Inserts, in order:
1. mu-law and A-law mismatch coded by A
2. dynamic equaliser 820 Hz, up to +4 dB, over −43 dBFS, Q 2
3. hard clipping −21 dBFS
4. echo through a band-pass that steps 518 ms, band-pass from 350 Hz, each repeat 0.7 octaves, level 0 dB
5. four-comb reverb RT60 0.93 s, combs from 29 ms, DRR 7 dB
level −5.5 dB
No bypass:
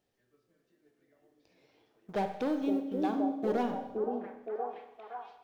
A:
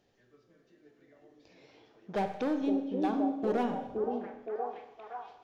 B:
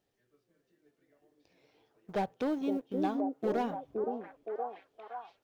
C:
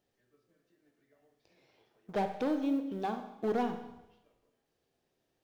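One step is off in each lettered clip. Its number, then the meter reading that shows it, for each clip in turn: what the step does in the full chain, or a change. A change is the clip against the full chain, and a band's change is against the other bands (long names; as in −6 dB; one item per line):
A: 1, distortion level −24 dB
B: 5, echo-to-direct ratio −2.5 dB to −5.0 dB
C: 4, echo-to-direct ratio −2.5 dB to −7.0 dB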